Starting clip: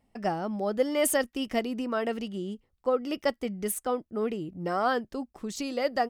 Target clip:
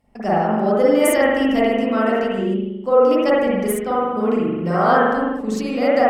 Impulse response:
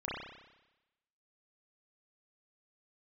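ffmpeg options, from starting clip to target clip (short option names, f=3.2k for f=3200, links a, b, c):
-filter_complex "[1:a]atrim=start_sample=2205,afade=t=out:st=0.38:d=0.01,atrim=end_sample=17199,asetrate=32193,aresample=44100[a];[0:a][a]afir=irnorm=-1:irlink=0,volume=5.5dB"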